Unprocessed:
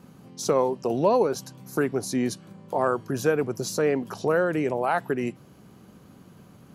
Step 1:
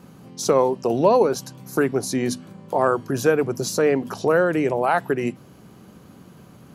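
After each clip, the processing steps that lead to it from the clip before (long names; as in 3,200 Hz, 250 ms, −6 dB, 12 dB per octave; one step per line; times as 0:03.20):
mains-hum notches 50/100/150/200/250 Hz
level +4.5 dB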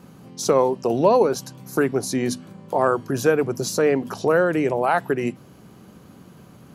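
no processing that can be heard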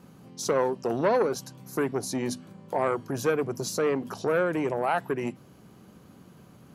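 saturating transformer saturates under 710 Hz
level −5.5 dB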